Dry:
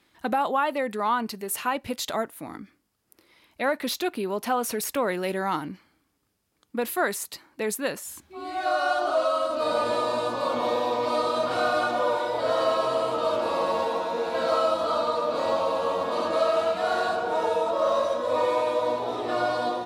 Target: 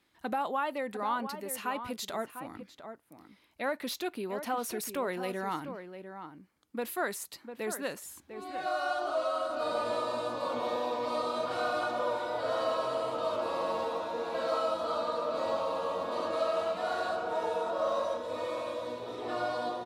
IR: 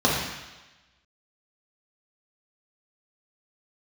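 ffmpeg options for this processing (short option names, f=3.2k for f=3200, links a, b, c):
-filter_complex "[0:a]asettb=1/sr,asplit=3[a][b][c];[a]atrim=end=18.174[d];[b]atrim=start=18.17:end=19.22,asetpts=PTS-STARTPTS,afade=t=in:d=0.004:c=qsin,afade=t=out:st=1.046:d=0.004:c=qsin,equalizer=f=800:w=1.2:g=-10[e];[c]atrim=start=19.216[f];[d][e]acrossfade=d=0.004:c1=hsin:c2=qsin[g];[g][f]acrossfade=d=0.004:c1=qsin:c2=hsin,asplit=2[h][i];[i]adelay=699.7,volume=-9dB,highshelf=f=4k:g=-15.7[j];[h][j]amix=inputs=2:normalize=0,volume=-7.5dB"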